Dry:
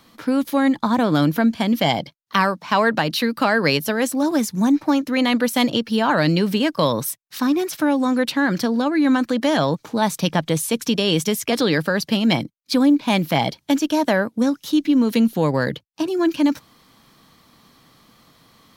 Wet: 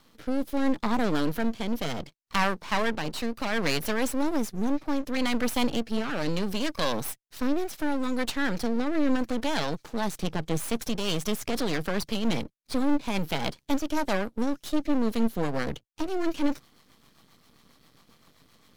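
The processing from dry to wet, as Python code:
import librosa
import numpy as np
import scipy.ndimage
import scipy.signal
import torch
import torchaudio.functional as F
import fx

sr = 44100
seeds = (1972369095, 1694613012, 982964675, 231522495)

y = fx.diode_clip(x, sr, knee_db=-15.5)
y = fx.rotary_switch(y, sr, hz=0.7, then_hz=7.5, switch_at_s=10.56)
y = np.maximum(y, 0.0)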